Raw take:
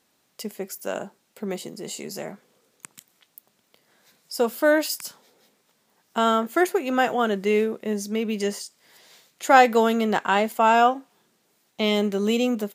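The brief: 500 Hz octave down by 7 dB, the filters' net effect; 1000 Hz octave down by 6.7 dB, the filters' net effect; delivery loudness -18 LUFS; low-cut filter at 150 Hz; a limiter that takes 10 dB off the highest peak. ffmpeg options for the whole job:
-af "highpass=150,equalizer=f=500:t=o:g=-7,equalizer=f=1k:t=o:g=-6.5,volume=11.5dB,alimiter=limit=-4dB:level=0:latency=1"

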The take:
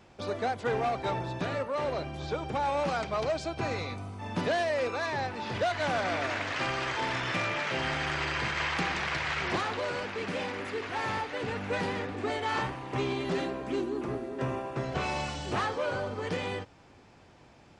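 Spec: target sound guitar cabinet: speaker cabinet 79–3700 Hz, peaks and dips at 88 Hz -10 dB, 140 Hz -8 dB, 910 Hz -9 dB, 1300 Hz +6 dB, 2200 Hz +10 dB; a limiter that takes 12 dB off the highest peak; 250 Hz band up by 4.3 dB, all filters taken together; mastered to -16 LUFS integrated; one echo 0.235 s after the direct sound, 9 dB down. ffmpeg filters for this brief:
-af "equalizer=f=250:t=o:g=6.5,alimiter=level_in=3.5dB:limit=-24dB:level=0:latency=1,volume=-3.5dB,highpass=79,equalizer=f=88:t=q:w=4:g=-10,equalizer=f=140:t=q:w=4:g=-8,equalizer=f=910:t=q:w=4:g=-9,equalizer=f=1.3k:t=q:w=4:g=6,equalizer=f=2.2k:t=q:w=4:g=10,lowpass=f=3.7k:w=0.5412,lowpass=f=3.7k:w=1.3066,aecho=1:1:235:0.355,volume=17.5dB"

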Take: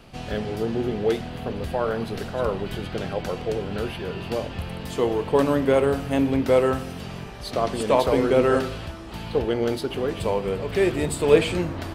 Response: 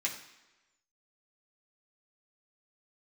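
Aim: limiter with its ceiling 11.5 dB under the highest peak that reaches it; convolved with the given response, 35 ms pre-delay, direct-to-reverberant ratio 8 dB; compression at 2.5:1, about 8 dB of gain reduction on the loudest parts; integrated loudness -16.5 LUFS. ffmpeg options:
-filter_complex "[0:a]acompressor=threshold=-22dB:ratio=2.5,alimiter=limit=-23dB:level=0:latency=1,asplit=2[a][b];[1:a]atrim=start_sample=2205,adelay=35[c];[b][c]afir=irnorm=-1:irlink=0,volume=-12.5dB[d];[a][d]amix=inputs=2:normalize=0,volume=15.5dB"

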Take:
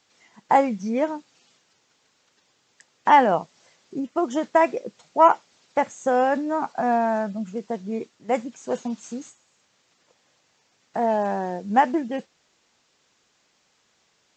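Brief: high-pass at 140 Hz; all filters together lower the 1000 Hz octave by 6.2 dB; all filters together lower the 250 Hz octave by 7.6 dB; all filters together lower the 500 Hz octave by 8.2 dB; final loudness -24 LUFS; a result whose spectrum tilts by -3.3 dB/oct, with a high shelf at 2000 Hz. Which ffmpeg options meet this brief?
-af "highpass=140,equalizer=f=250:t=o:g=-6,equalizer=f=500:t=o:g=-8,equalizer=f=1k:t=o:g=-3.5,highshelf=f=2k:g=-4,volume=6dB"

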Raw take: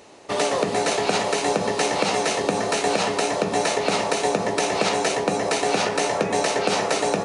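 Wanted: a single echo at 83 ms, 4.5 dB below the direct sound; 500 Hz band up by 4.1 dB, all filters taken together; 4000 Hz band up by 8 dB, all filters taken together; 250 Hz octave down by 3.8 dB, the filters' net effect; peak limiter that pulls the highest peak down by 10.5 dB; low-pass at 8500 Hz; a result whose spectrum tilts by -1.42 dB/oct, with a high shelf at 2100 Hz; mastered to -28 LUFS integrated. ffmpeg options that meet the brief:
-af "lowpass=8.5k,equalizer=f=250:t=o:g=-8.5,equalizer=f=500:t=o:g=7,highshelf=f=2.1k:g=3,equalizer=f=4k:t=o:g=7,alimiter=limit=-11.5dB:level=0:latency=1,aecho=1:1:83:0.596,volume=-8.5dB"

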